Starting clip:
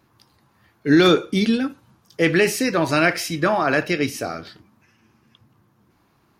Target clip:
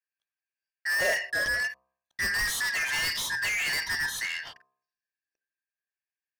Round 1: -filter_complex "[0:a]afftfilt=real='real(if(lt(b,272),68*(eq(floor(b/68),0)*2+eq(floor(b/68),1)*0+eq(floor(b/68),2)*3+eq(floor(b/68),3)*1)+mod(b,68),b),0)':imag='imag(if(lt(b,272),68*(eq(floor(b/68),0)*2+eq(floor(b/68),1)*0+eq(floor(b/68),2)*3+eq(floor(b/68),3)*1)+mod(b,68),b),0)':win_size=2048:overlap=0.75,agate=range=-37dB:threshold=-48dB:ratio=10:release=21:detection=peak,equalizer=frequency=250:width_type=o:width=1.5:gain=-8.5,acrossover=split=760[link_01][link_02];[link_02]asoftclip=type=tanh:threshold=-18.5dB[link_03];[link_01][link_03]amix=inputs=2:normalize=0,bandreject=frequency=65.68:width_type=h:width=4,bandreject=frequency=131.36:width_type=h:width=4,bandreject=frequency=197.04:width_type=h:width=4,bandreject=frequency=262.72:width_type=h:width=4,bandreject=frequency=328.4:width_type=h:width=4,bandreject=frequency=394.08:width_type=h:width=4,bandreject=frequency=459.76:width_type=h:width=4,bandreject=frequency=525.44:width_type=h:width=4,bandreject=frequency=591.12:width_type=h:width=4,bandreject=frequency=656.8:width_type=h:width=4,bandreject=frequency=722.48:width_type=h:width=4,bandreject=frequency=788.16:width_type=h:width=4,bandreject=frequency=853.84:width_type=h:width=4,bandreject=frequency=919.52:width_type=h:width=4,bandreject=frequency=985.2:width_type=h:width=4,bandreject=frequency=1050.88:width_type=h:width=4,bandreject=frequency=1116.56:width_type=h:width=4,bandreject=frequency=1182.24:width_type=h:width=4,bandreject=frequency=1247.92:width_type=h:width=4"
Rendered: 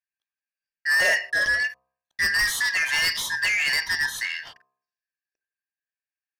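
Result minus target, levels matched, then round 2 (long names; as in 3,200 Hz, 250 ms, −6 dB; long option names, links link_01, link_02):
soft clipping: distortion −5 dB
-filter_complex "[0:a]afftfilt=real='real(if(lt(b,272),68*(eq(floor(b/68),0)*2+eq(floor(b/68),1)*0+eq(floor(b/68),2)*3+eq(floor(b/68),3)*1)+mod(b,68),b),0)':imag='imag(if(lt(b,272),68*(eq(floor(b/68),0)*2+eq(floor(b/68),1)*0+eq(floor(b/68),2)*3+eq(floor(b/68),3)*1)+mod(b,68),b),0)':win_size=2048:overlap=0.75,agate=range=-37dB:threshold=-48dB:ratio=10:release=21:detection=peak,equalizer=frequency=250:width_type=o:width=1.5:gain=-8.5,acrossover=split=760[link_01][link_02];[link_02]asoftclip=type=tanh:threshold=-27dB[link_03];[link_01][link_03]amix=inputs=2:normalize=0,bandreject=frequency=65.68:width_type=h:width=4,bandreject=frequency=131.36:width_type=h:width=4,bandreject=frequency=197.04:width_type=h:width=4,bandreject=frequency=262.72:width_type=h:width=4,bandreject=frequency=328.4:width_type=h:width=4,bandreject=frequency=394.08:width_type=h:width=4,bandreject=frequency=459.76:width_type=h:width=4,bandreject=frequency=525.44:width_type=h:width=4,bandreject=frequency=591.12:width_type=h:width=4,bandreject=frequency=656.8:width_type=h:width=4,bandreject=frequency=722.48:width_type=h:width=4,bandreject=frequency=788.16:width_type=h:width=4,bandreject=frequency=853.84:width_type=h:width=4,bandreject=frequency=919.52:width_type=h:width=4,bandreject=frequency=985.2:width_type=h:width=4,bandreject=frequency=1050.88:width_type=h:width=4,bandreject=frequency=1116.56:width_type=h:width=4,bandreject=frequency=1182.24:width_type=h:width=4,bandreject=frequency=1247.92:width_type=h:width=4"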